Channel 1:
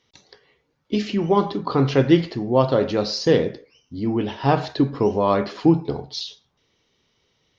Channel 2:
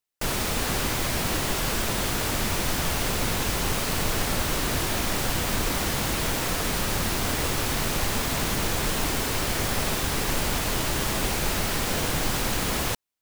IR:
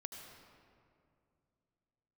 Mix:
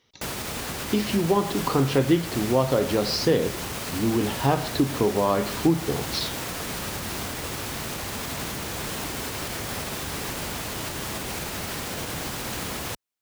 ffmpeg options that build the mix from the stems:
-filter_complex "[0:a]volume=0.5dB[a];[1:a]highpass=64,alimiter=limit=-19.5dB:level=0:latency=1:release=93,volume=-2dB[b];[a][b]amix=inputs=2:normalize=0,acompressor=threshold=-20dB:ratio=2"

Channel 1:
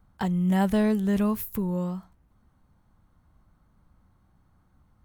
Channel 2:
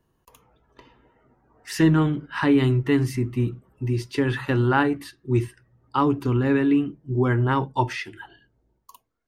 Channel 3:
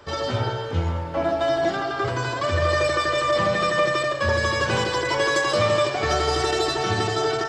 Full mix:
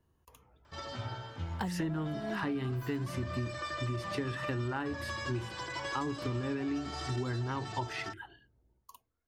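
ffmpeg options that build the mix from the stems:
-filter_complex "[0:a]alimiter=limit=-18.5dB:level=0:latency=1,adelay=1400,volume=0.5dB[a];[1:a]equalizer=f=75:w=2.7:g=12.5,volume=-6dB,asplit=2[b][c];[2:a]equalizer=f=450:w=2.6:g=-11.5,adelay=650,volume=-13.5dB[d];[c]apad=whole_len=284221[e];[a][e]sidechaincompress=threshold=-43dB:ratio=8:attack=16:release=390[f];[f][b][d]amix=inputs=3:normalize=0,acompressor=threshold=-32dB:ratio=6"

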